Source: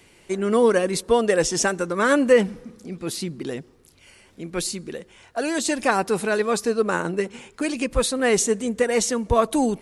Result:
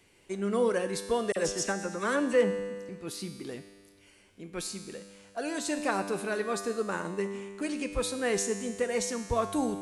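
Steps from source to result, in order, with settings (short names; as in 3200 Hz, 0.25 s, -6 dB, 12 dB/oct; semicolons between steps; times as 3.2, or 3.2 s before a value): resonator 99 Hz, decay 1.8 s, mix 80%; 1.32–2.89 dispersion lows, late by 43 ms, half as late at 3000 Hz; gain +3 dB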